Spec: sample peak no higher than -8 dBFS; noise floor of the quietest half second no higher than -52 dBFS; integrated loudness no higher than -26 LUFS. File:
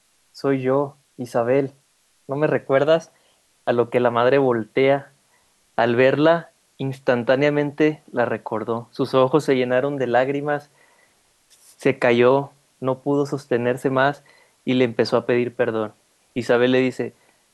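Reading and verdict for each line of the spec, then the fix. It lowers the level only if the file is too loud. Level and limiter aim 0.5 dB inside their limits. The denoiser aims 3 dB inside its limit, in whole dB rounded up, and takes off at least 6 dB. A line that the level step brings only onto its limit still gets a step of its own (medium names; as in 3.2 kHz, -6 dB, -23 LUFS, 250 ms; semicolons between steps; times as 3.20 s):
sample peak -5.5 dBFS: fail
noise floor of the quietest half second -62 dBFS: pass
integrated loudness -20.5 LUFS: fail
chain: trim -6 dB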